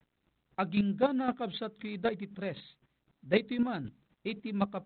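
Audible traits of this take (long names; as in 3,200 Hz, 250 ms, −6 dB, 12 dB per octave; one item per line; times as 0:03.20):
a quantiser's noise floor 12 bits, dither none
chopped level 3.9 Hz, depth 60%, duty 15%
G.726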